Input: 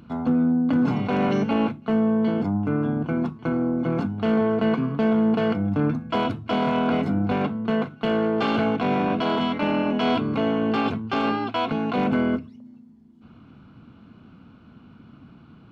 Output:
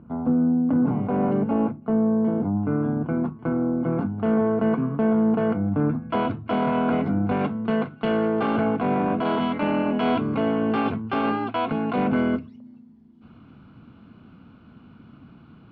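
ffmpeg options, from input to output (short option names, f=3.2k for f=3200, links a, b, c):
-af "asetnsamples=n=441:p=0,asendcmd='2.57 lowpass f 1500;6.03 lowpass f 2200;7.39 lowpass f 3000;8.4 lowpass f 1800;9.25 lowpass f 2500;12.16 lowpass f 4200',lowpass=1k"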